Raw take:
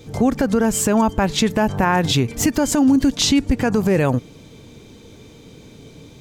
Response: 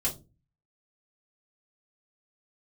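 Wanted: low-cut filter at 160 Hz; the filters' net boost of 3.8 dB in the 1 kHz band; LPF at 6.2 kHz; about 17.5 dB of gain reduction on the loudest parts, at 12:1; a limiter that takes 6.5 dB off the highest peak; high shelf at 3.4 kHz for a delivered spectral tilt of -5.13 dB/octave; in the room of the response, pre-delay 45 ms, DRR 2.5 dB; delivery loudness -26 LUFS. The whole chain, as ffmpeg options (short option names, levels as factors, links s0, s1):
-filter_complex "[0:a]highpass=160,lowpass=6200,equalizer=f=1000:t=o:g=5,highshelf=f=3400:g=-4,acompressor=threshold=0.0316:ratio=12,alimiter=level_in=1.19:limit=0.0631:level=0:latency=1,volume=0.841,asplit=2[s0][s1];[1:a]atrim=start_sample=2205,adelay=45[s2];[s1][s2]afir=irnorm=-1:irlink=0,volume=0.398[s3];[s0][s3]amix=inputs=2:normalize=0,volume=2.24"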